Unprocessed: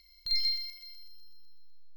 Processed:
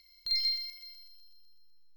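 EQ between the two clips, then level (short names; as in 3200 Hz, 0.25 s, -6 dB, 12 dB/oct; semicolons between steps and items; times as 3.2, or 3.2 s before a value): low shelf 220 Hz -10.5 dB; 0.0 dB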